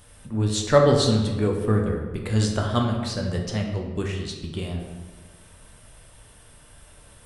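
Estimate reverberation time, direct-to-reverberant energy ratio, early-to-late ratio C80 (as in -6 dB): 1.4 s, 0.5 dB, 6.0 dB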